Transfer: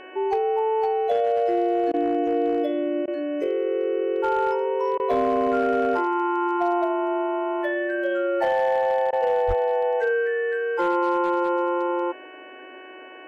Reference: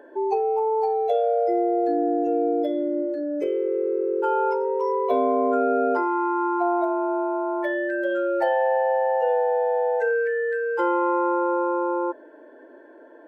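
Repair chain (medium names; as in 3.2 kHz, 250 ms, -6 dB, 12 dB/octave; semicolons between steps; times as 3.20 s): clip repair -15.5 dBFS; de-hum 371.9 Hz, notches 8; de-plosive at 9.47 s; interpolate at 1.92/3.06/4.98/9.11 s, 16 ms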